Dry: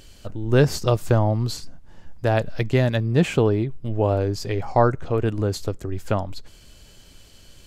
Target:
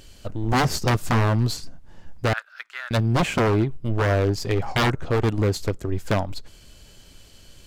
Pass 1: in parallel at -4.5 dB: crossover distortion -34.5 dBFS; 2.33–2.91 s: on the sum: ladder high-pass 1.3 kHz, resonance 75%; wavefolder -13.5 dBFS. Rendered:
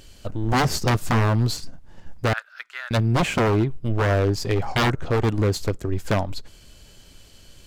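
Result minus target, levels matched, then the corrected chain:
crossover distortion: distortion -6 dB
in parallel at -4.5 dB: crossover distortion -28.5 dBFS; 2.33–2.91 s: on the sum: ladder high-pass 1.3 kHz, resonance 75%; wavefolder -13.5 dBFS

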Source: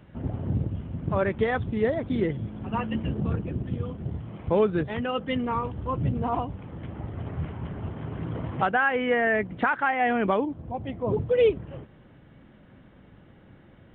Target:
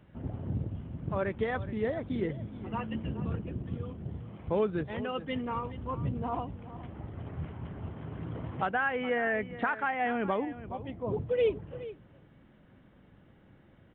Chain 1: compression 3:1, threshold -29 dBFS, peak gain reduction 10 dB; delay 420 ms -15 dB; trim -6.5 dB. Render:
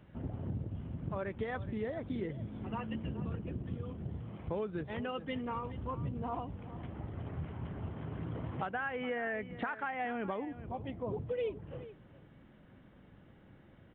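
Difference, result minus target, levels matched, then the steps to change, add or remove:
compression: peak gain reduction +10 dB
remove: compression 3:1, threshold -29 dBFS, peak gain reduction 10 dB

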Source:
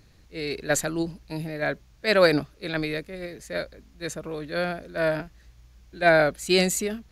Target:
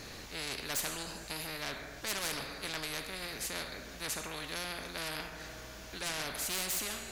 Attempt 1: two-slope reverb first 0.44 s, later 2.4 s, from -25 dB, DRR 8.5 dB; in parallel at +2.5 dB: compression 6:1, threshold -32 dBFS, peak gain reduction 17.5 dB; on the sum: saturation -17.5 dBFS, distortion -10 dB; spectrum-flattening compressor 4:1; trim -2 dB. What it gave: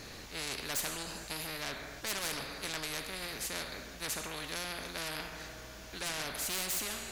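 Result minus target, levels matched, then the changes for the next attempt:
compression: peak gain reduction -8.5 dB
change: compression 6:1, threshold -42.5 dBFS, peak gain reduction 26 dB

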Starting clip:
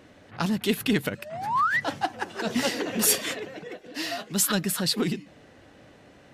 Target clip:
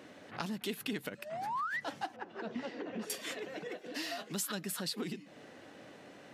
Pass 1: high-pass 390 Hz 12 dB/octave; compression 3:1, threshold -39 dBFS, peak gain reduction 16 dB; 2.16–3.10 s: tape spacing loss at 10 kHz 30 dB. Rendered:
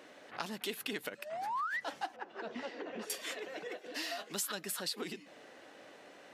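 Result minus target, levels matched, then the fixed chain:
250 Hz band -5.0 dB
high-pass 180 Hz 12 dB/octave; compression 3:1, threshold -39 dBFS, peak gain reduction 16 dB; 2.16–3.10 s: tape spacing loss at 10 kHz 30 dB

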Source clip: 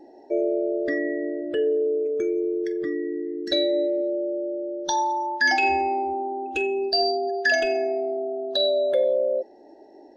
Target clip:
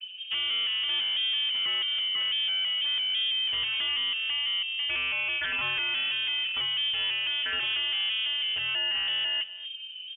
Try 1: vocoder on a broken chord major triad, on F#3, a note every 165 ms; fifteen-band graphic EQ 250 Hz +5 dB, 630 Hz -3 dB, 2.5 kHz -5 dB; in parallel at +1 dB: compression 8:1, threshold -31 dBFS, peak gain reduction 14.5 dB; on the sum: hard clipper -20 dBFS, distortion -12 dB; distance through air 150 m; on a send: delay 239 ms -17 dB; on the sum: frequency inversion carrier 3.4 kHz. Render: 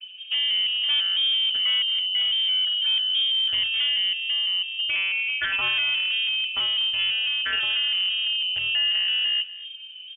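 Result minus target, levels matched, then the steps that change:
hard clipper: distortion -6 dB
change: hard clipper -27 dBFS, distortion -7 dB

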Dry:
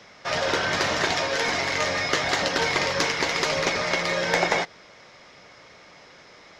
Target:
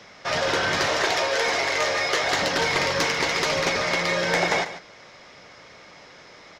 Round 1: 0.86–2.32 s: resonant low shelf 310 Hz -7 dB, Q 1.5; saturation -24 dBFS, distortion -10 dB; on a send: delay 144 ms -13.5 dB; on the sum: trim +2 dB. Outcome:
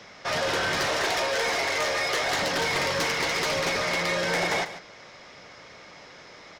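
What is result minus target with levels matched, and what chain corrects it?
saturation: distortion +8 dB
0.86–2.32 s: resonant low shelf 310 Hz -7 dB, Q 1.5; saturation -16 dBFS, distortion -17 dB; on a send: delay 144 ms -13.5 dB; on the sum: trim +2 dB

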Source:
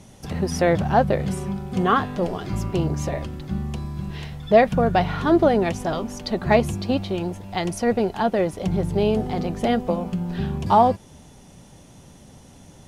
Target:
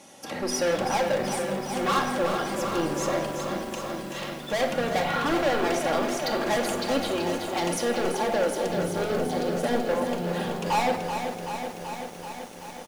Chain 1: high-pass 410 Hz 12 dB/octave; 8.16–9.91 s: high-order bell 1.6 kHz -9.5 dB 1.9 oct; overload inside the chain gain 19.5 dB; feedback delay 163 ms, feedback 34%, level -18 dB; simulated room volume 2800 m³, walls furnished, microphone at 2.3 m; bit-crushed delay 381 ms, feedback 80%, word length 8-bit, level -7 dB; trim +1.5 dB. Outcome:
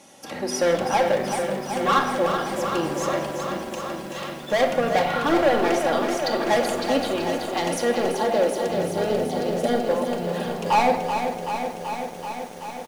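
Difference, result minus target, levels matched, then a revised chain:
overload inside the chain: distortion -4 dB
high-pass 410 Hz 12 dB/octave; 8.16–9.91 s: high-order bell 1.6 kHz -9.5 dB 1.9 oct; overload inside the chain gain 26 dB; feedback delay 163 ms, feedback 34%, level -18 dB; simulated room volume 2800 m³, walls furnished, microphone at 2.3 m; bit-crushed delay 381 ms, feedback 80%, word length 8-bit, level -7 dB; trim +1.5 dB

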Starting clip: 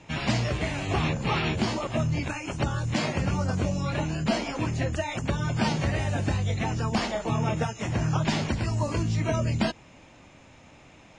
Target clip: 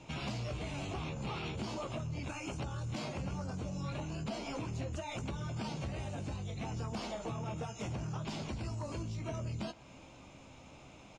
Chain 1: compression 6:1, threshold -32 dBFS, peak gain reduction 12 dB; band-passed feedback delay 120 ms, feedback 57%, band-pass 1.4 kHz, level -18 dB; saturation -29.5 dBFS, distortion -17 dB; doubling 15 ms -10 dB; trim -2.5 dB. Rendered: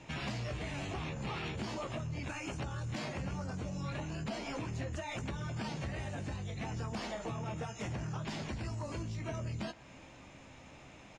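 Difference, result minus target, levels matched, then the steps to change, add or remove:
2 kHz band +3.0 dB
add after compression: peaking EQ 1.8 kHz -11.5 dB 0.33 oct

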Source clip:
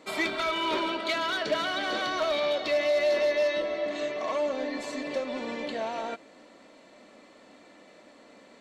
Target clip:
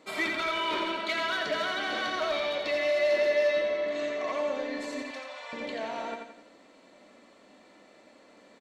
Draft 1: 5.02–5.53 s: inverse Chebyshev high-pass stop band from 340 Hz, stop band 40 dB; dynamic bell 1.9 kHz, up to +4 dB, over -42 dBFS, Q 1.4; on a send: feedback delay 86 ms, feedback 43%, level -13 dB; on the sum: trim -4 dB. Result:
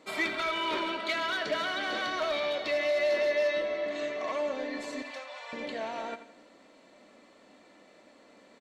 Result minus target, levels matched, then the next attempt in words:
echo-to-direct -8 dB
5.02–5.53 s: inverse Chebyshev high-pass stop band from 340 Hz, stop band 40 dB; dynamic bell 1.9 kHz, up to +4 dB, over -42 dBFS, Q 1.4; on a send: feedback delay 86 ms, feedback 43%, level -5 dB; on the sum: trim -4 dB

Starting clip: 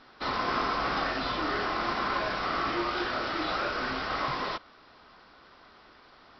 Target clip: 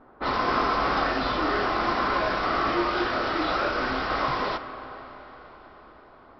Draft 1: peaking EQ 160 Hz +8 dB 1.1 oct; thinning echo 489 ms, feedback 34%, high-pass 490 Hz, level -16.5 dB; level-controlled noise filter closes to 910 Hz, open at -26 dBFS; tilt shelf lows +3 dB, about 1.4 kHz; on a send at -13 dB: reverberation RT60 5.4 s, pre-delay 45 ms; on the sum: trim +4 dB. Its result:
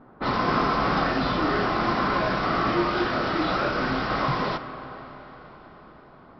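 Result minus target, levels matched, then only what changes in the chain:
125 Hz band +7.0 dB
change: peaking EQ 160 Hz -4 dB 1.1 oct

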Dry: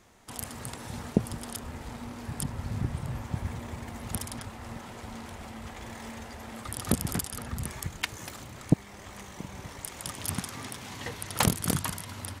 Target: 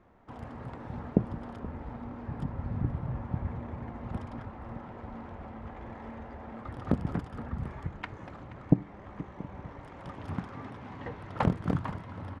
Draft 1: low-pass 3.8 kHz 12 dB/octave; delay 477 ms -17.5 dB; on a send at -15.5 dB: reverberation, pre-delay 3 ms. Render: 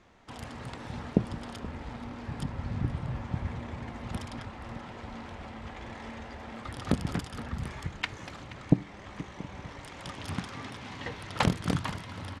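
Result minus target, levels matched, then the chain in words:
4 kHz band +14.0 dB
low-pass 1.3 kHz 12 dB/octave; delay 477 ms -17.5 dB; on a send at -15.5 dB: reverberation, pre-delay 3 ms

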